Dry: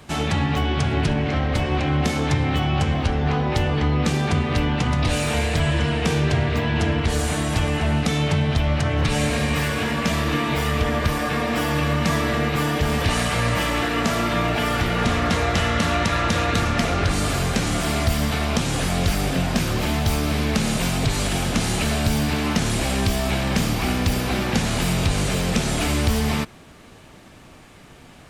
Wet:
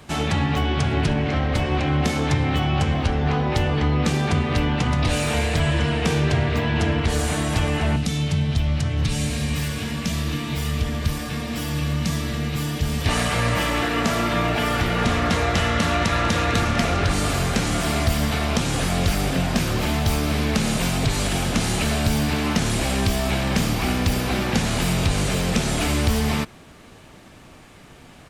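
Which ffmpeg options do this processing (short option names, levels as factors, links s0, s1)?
-filter_complex "[0:a]asettb=1/sr,asplit=3[s0][s1][s2];[s0]atrim=end=7.964[s3];[s1]atrim=start=7.96:end=13.06,asetpts=PTS-STARTPTS,afade=t=in:d=0.004:c=qsin,afade=t=out:st=5.096:d=0.004:c=qsin,acrossover=split=250|3000[s4][s5][s6];[s5]acompressor=threshold=0.00794:ratio=2:attack=3.2:release=140:knee=2.83:detection=peak[s7];[s4][s7][s6]amix=inputs=3:normalize=0[s8];[s2]atrim=start=13.056[s9];[s3][s8]acrossfade=d=0.004:c1=hsin:c2=qsin[s10];[s10][s9]acrossfade=d=0.004:c1=qsin:c2=hsin,asplit=2[s11][s12];[s12]afade=t=in:st=15.56:d=0.01,afade=t=out:st=16.45:d=0.01,aecho=0:1:450|900|1350|1800|2250|2700|3150|3600|4050|4500|4950|5400:0.16788|0.142698|0.121294|0.1031|0.0876346|0.0744894|0.063316|0.0538186|0.0457458|0.0388839|0.0330514|0.0280937[s13];[s11][s13]amix=inputs=2:normalize=0"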